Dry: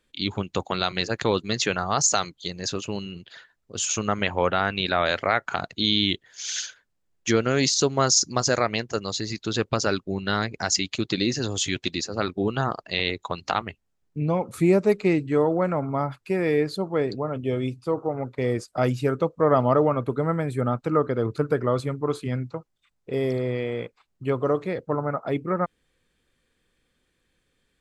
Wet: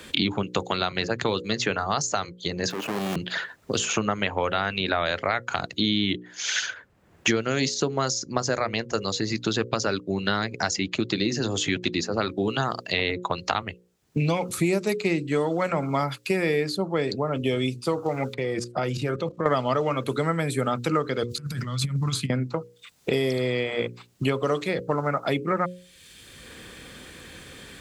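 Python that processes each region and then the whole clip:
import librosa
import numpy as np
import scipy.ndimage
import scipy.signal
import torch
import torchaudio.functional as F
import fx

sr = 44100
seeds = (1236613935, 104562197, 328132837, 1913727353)

y = fx.chain(x, sr, fx.halfwave_hold(),
    fx.highpass(hz=240.0, slope=12),
    fx.level_steps(step_db=20), at=(2.7, 3.16))
y = fx.chain(y, sr, fx.lowpass(hz=1400.0, slope=6),
    fx.comb(ms=5.7, depth=0.39),
    fx.level_steps(step_db=17), at=(18.34, 19.46))
y = fx.chain(y, sr, fx.curve_eq(hz=(160.0, 440.0, 4600.0), db=(0, -28, 7)),
    fx.over_compress(threshold_db=-35.0, ratio=-0.5), at=(21.23, 22.3))
y = scipy.signal.sosfilt(scipy.signal.butter(2, 62.0, 'highpass', fs=sr, output='sos'), y)
y = fx.hum_notches(y, sr, base_hz=60, count=9)
y = fx.band_squash(y, sr, depth_pct=100)
y = F.gain(torch.from_numpy(y), -1.0).numpy()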